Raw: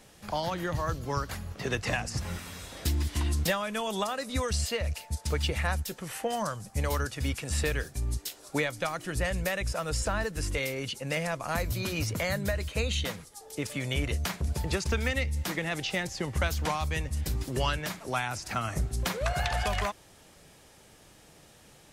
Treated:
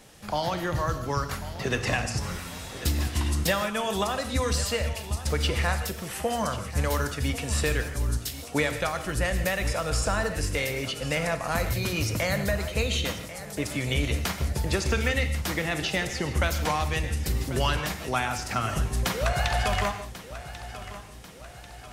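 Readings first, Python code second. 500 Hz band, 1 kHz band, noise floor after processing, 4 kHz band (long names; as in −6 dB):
+3.5 dB, +4.0 dB, −43 dBFS, +4.0 dB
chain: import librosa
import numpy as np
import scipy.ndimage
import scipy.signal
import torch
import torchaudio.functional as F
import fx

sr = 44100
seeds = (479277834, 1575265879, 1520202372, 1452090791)

p1 = x + fx.echo_feedback(x, sr, ms=1091, feedback_pct=51, wet_db=-14.5, dry=0)
p2 = fx.rev_gated(p1, sr, seeds[0], gate_ms=190, shape='flat', drr_db=8.0)
y = F.gain(torch.from_numpy(p2), 3.0).numpy()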